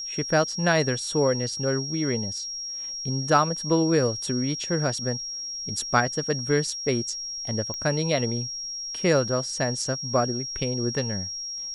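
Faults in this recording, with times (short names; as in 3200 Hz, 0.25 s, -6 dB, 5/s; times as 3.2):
tone 5600 Hz -31 dBFS
7.74 pop -19 dBFS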